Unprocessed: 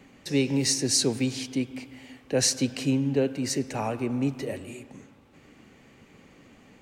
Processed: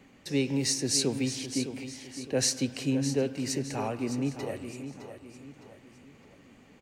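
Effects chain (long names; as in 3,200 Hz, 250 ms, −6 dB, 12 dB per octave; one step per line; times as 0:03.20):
repeating echo 611 ms, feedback 41%, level −10.5 dB
level −3.5 dB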